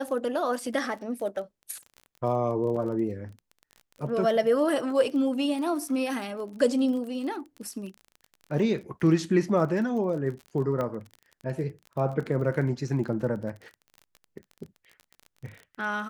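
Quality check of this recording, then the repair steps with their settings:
crackle 30/s -36 dBFS
2.76–2.77 gap 5.2 ms
10.81 pop -19 dBFS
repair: de-click; interpolate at 2.76, 5.2 ms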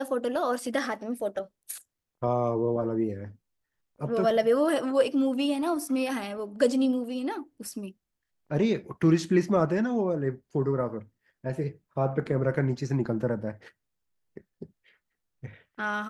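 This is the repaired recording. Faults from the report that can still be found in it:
none

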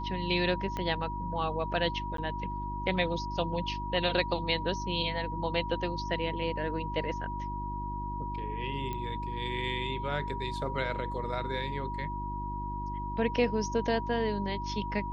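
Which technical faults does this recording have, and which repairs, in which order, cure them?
hum 50 Hz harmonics 7 -38 dBFS
tone 960 Hz -36 dBFS
0.77 pop -21 dBFS
2.17–2.18 gap 13 ms
8.93 pop -23 dBFS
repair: de-click; de-hum 50 Hz, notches 7; notch 960 Hz, Q 30; interpolate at 2.17, 13 ms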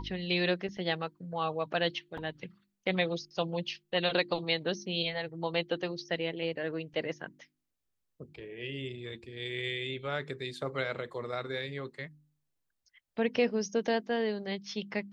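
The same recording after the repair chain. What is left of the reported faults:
0.77 pop

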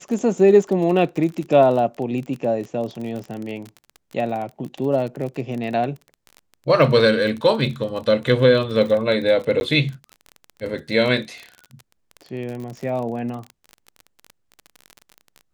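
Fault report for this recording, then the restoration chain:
crackle 31/s -28 dBFS
9.6–9.61 gap 11 ms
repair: de-click; interpolate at 9.6, 11 ms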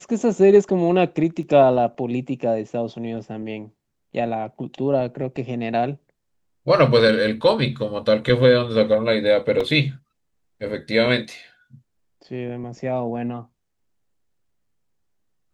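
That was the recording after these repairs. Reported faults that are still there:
none

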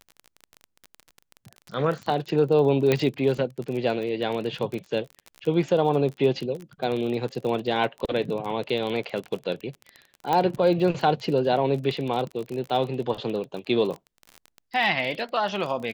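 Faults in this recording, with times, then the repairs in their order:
crackle 30/s -30 dBFS
2.92 pop -8 dBFS
10.33 pop -12 dBFS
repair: de-click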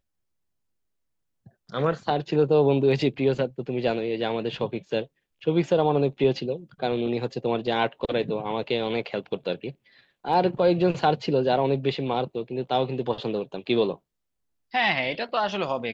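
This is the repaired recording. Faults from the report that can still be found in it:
2.92 pop
10.33 pop

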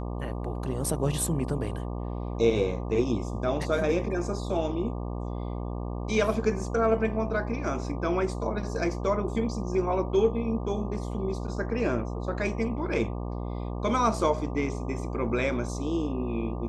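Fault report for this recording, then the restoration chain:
buzz 60 Hz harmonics 20 -33 dBFS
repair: de-hum 60 Hz, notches 20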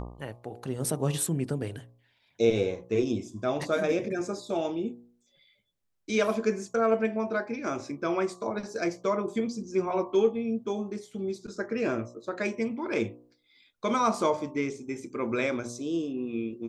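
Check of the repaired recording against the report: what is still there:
none

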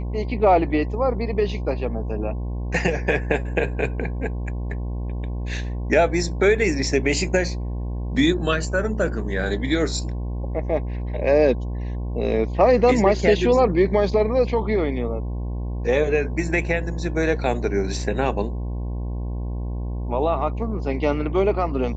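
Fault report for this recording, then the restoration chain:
buzz 60 Hz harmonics 18 -27 dBFS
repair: de-hum 60 Hz, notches 18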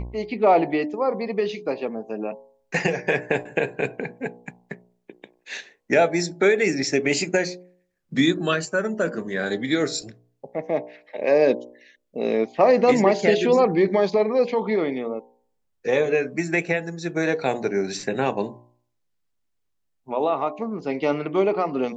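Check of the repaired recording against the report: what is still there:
none

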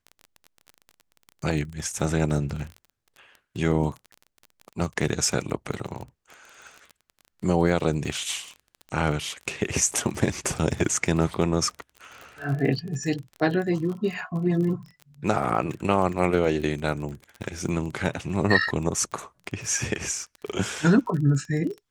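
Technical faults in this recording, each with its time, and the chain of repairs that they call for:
crackle 28/s -32 dBFS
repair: de-click

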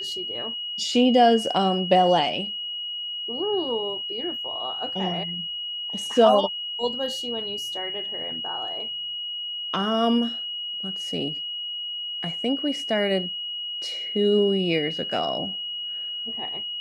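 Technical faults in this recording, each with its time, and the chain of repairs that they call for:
tone 2900 Hz -29 dBFS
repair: notch 2900 Hz, Q 30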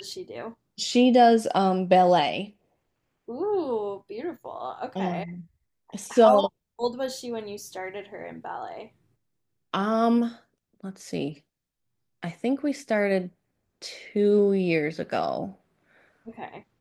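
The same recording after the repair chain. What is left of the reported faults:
none

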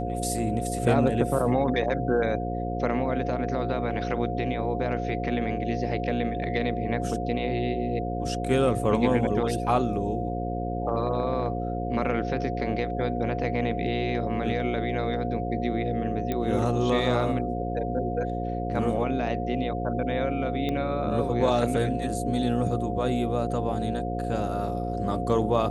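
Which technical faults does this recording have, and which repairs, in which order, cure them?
buzz 60 Hz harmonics 9 -31 dBFS
tone 710 Hz -32 dBFS
16.32 pop -15 dBFS
20.69 pop -18 dBFS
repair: de-click; notch 710 Hz, Q 30; de-hum 60 Hz, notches 9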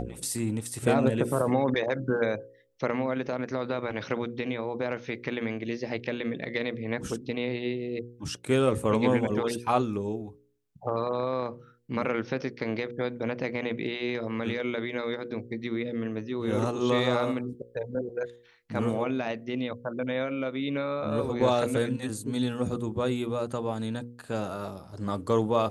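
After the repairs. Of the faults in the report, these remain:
16.32 pop

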